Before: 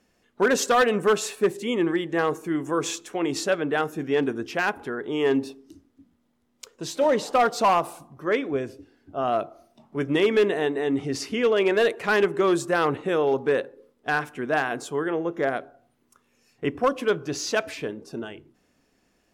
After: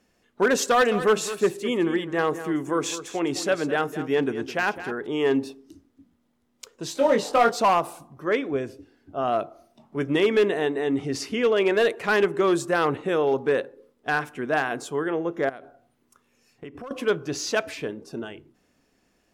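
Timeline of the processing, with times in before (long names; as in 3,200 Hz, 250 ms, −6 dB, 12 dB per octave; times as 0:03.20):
0:00.64–0:05.07: single-tap delay 210 ms −12.5 dB
0:06.93–0:07.56: double-tracking delay 22 ms −4 dB
0:15.49–0:16.91: downward compressor 12 to 1, threshold −35 dBFS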